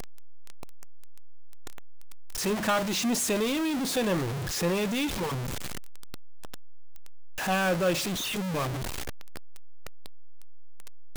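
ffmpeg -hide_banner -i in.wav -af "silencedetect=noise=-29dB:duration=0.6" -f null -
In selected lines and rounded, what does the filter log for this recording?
silence_start: 0.00
silence_end: 2.40 | silence_duration: 2.40
silence_start: 5.35
silence_end: 7.43 | silence_duration: 2.08
silence_start: 8.68
silence_end: 11.17 | silence_duration: 2.49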